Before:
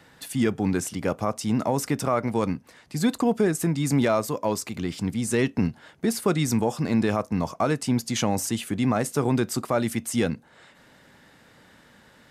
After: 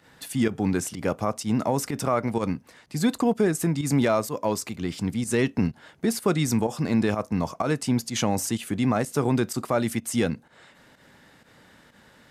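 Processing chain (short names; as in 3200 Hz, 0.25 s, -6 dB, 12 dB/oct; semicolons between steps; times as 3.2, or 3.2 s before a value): pump 126 bpm, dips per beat 1, -11 dB, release 93 ms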